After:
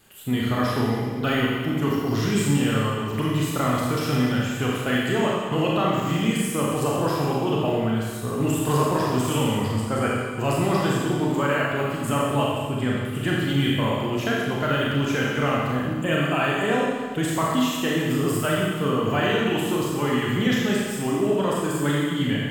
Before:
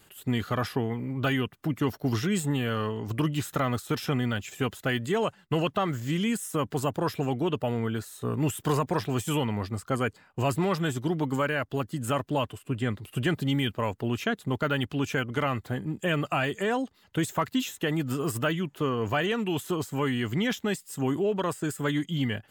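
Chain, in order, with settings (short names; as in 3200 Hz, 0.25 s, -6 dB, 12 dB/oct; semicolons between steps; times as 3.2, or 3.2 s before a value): crackle 18/s -43 dBFS; Schroeder reverb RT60 1.6 s, combs from 28 ms, DRR -4.5 dB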